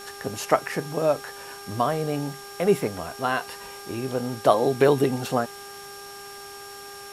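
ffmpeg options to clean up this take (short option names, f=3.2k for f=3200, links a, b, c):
-af "bandreject=f=401.2:t=h:w=4,bandreject=f=802.4:t=h:w=4,bandreject=f=1.2036k:t=h:w=4,bandreject=f=1.6048k:t=h:w=4,bandreject=f=5.5k:w=30,afwtdn=0.0063"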